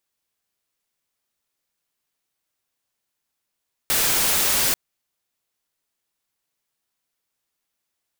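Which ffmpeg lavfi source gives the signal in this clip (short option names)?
-f lavfi -i "anoisesrc=c=white:a=0.173:d=0.84:r=44100:seed=1"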